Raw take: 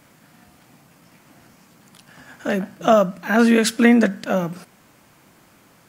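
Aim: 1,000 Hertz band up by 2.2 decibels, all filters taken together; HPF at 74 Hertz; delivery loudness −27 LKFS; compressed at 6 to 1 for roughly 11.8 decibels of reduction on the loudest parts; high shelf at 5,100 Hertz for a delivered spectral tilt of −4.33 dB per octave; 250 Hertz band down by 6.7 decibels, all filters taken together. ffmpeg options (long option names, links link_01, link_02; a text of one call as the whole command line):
ffmpeg -i in.wav -af "highpass=74,equalizer=frequency=250:width_type=o:gain=-7.5,equalizer=frequency=1000:width_type=o:gain=4.5,highshelf=frequency=5100:gain=-4,acompressor=threshold=-22dB:ratio=6,volume=0.5dB" out.wav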